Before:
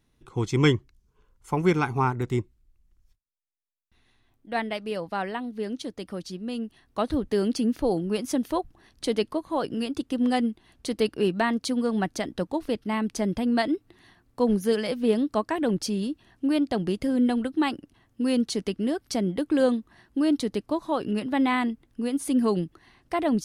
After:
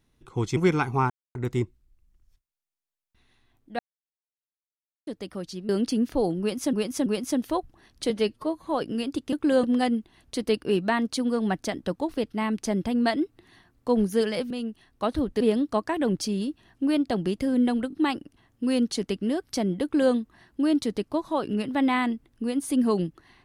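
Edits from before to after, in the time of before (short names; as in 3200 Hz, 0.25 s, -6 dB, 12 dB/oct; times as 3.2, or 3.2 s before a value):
0.57–1.59 cut
2.12 insert silence 0.25 s
4.56–5.84 mute
6.46–7.36 move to 15.02
8.07–8.4 loop, 3 plays
9.11–9.48 stretch 1.5×
17.5 stutter 0.02 s, 3 plays
19.4–19.71 copy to 10.15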